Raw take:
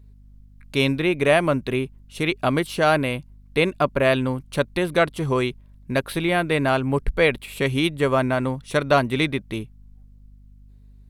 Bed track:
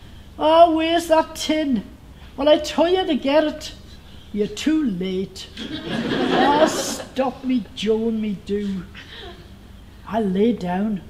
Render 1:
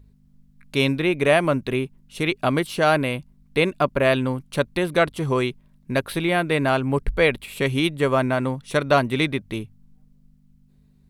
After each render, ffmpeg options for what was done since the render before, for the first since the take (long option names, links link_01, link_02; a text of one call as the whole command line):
ffmpeg -i in.wav -af "bandreject=frequency=50:width_type=h:width=4,bandreject=frequency=100:width_type=h:width=4" out.wav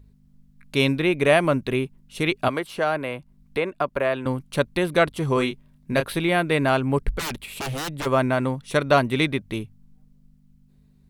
ffmpeg -i in.wav -filter_complex "[0:a]asettb=1/sr,asplit=3[link_01][link_02][link_03];[link_01]atrim=end=2.484[link_04];[link_02]atrim=start=2.48:end=4.26,asetpts=PTS-STARTPTS,afade=type=in:duration=0.004:curve=qsin,afade=type=out:start_time=1.776:duration=0.004:curve=qsin,acrossover=split=390|2100[link_05][link_06][link_07];[link_05]acompressor=threshold=-36dB:ratio=4[link_08];[link_06]acompressor=threshold=-20dB:ratio=4[link_09];[link_07]acompressor=threshold=-41dB:ratio=4[link_10];[link_08][link_09][link_10]amix=inputs=3:normalize=0[link_11];[link_03]atrim=start=4.256[link_12];[link_04][link_11]acrossfade=duration=0.004:curve1=hsin:curve2=qsin[link_13];[link_13][link_12]acrossfade=duration=0.004:curve1=qsin:curve2=hsin,asettb=1/sr,asplit=3[link_14][link_15][link_16];[link_14]atrim=end=5.344[link_17];[link_15]atrim=start=5.34:end=6.07,asetpts=PTS-STARTPTS,afade=type=in:duration=0.004:curve=qsin,afade=type=out:start_time=0.726:duration=0.004:curve=qsin,asplit=2[link_18][link_19];[link_19]adelay=28,volume=-7dB[link_20];[link_18][link_20]amix=inputs=2:normalize=0,atrim=end_sample=32193[link_21];[link_16]atrim=start=6.066[link_22];[link_17][link_21]acrossfade=duration=0.004:curve1=hsin:curve2=qsin[link_23];[link_23][link_22]acrossfade=duration=0.004:curve1=qsin:curve2=hsin,asplit=3[link_24][link_25][link_26];[link_24]afade=type=out:start_time=7.18:duration=0.02[link_27];[link_25]aeval=exprs='0.0631*(abs(mod(val(0)/0.0631+3,4)-2)-1)':channel_layout=same,afade=type=in:start_time=7.18:duration=0.02,afade=type=out:start_time=8.05:duration=0.02[link_28];[link_26]afade=type=in:start_time=8.05:duration=0.02[link_29];[link_27][link_28][link_29]amix=inputs=3:normalize=0" out.wav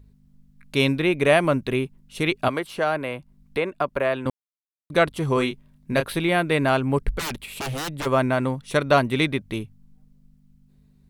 ffmpeg -i in.wav -filter_complex "[0:a]asplit=3[link_01][link_02][link_03];[link_01]atrim=end=4.3,asetpts=PTS-STARTPTS,afade=type=out:start_time=4.296:duration=0.004:curve=hsin[link_04];[link_02]atrim=start=4.3:end=4.9,asetpts=PTS-STARTPTS,volume=0[link_05];[link_03]atrim=start=4.9,asetpts=PTS-STARTPTS,afade=type=in:duration=0.004:curve=hsin[link_06];[link_04][link_05][link_06]concat=n=3:v=0:a=1" out.wav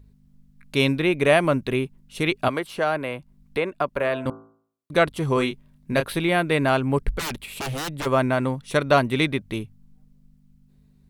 ffmpeg -i in.wav -filter_complex "[0:a]asettb=1/sr,asplit=3[link_01][link_02][link_03];[link_01]atrim=end=3.904[link_04];[link_02]atrim=start=3.9:end=4.92,asetpts=PTS-STARTPTS,afade=type=in:duration=0.004:curve=qsin,afade=type=out:start_time=1.016:duration=0.004:curve=qsin,bandreject=frequency=55.13:width_type=h:width=4,bandreject=frequency=110.26:width_type=h:width=4,bandreject=frequency=165.39:width_type=h:width=4,bandreject=frequency=220.52:width_type=h:width=4,bandreject=frequency=275.65:width_type=h:width=4,bandreject=frequency=330.78:width_type=h:width=4,bandreject=frequency=385.91:width_type=h:width=4,bandreject=frequency=441.04:width_type=h:width=4,bandreject=frequency=496.17:width_type=h:width=4,bandreject=frequency=551.3:width_type=h:width=4,bandreject=frequency=606.43:width_type=h:width=4,bandreject=frequency=661.56:width_type=h:width=4,bandreject=frequency=716.69:width_type=h:width=4,bandreject=frequency=771.82:width_type=h:width=4,bandreject=frequency=826.95:width_type=h:width=4,bandreject=frequency=882.08:width_type=h:width=4,bandreject=frequency=937.21:width_type=h:width=4,bandreject=frequency=992.34:width_type=h:width=4,bandreject=frequency=1047.47:width_type=h:width=4,bandreject=frequency=1102.6:width_type=h:width=4,bandreject=frequency=1157.73:width_type=h:width=4,bandreject=frequency=1212.86:width_type=h:width=4,bandreject=frequency=1267.99:width_type=h:width=4,bandreject=frequency=1323.12:width_type=h:width=4,bandreject=frequency=1378.25:width_type=h:width=4,bandreject=frequency=1433.38:width_type=h:width=4,bandreject=frequency=1488.51:width_type=h:width=4,bandreject=frequency=1543.64:width_type=h:width=4,bandreject=frequency=1598.77:width_type=h:width=4[link_05];[link_03]atrim=start=4.916[link_06];[link_04][link_05]acrossfade=duration=0.004:curve1=hsin:curve2=qsin[link_07];[link_07][link_06]acrossfade=duration=0.004:curve1=qsin:curve2=hsin" out.wav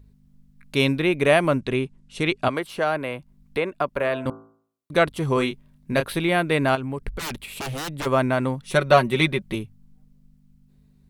ffmpeg -i in.wav -filter_complex "[0:a]asettb=1/sr,asplit=3[link_01][link_02][link_03];[link_01]atrim=end=1.584[link_04];[link_02]atrim=start=1.58:end=2.56,asetpts=PTS-STARTPTS,afade=type=in:duration=0.004:curve=qsin,afade=type=out:start_time=0.976:duration=0.004:curve=qsin,lowpass=frequency=9600:width=0.5412,lowpass=frequency=9600:width=1.3066[link_05];[link_03]atrim=start=2.556[link_06];[link_04][link_05]acrossfade=duration=0.004:curve1=hsin:curve2=qsin[link_07];[link_07][link_06]acrossfade=duration=0.004:curve1=qsin:curve2=hsin,asettb=1/sr,asplit=3[link_08][link_09][link_10];[link_08]atrim=end=6.754[link_11];[link_09]atrim=start=6.75:end=7.93,asetpts=PTS-STARTPTS,afade=type=in:duration=0.004:curve=qsin,afade=type=out:start_time=1.176:duration=0.004:curve=qsin,acompressor=threshold=-27dB:ratio=3:attack=3.2:release=140:knee=1:detection=peak[link_12];[link_10]atrim=start=7.926[link_13];[link_11][link_12]acrossfade=duration=0.004:curve1=hsin:curve2=qsin[link_14];[link_14][link_13]acrossfade=duration=0.004:curve1=qsin:curve2=hsin,asettb=1/sr,asplit=3[link_15][link_16][link_17];[link_15]atrim=end=8.654[link_18];[link_16]atrim=start=8.65:end=9.55,asetpts=PTS-STARTPTS,afade=type=in:duration=0.004:curve=qsin,afade=type=out:start_time=0.896:duration=0.004:curve=qsin,aecho=1:1:5.4:0.65,atrim=end_sample=39690[link_19];[link_17]atrim=start=9.546[link_20];[link_18][link_19]acrossfade=duration=0.004:curve1=hsin:curve2=qsin[link_21];[link_21][link_20]acrossfade=duration=0.004:curve1=qsin:curve2=hsin" out.wav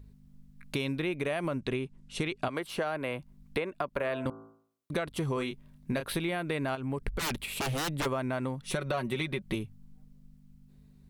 ffmpeg -i in.wav -af "alimiter=limit=-12.5dB:level=0:latency=1:release=76,acompressor=threshold=-28dB:ratio=10" out.wav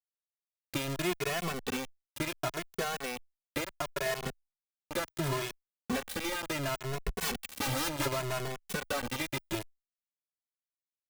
ffmpeg -i in.wav -filter_complex "[0:a]acrusher=bits=4:mix=0:aa=0.000001,asplit=2[link_01][link_02];[link_02]adelay=2.3,afreqshift=0.7[link_03];[link_01][link_03]amix=inputs=2:normalize=1" out.wav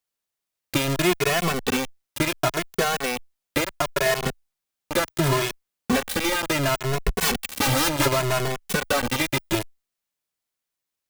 ffmpeg -i in.wav -af "volume=11dB" out.wav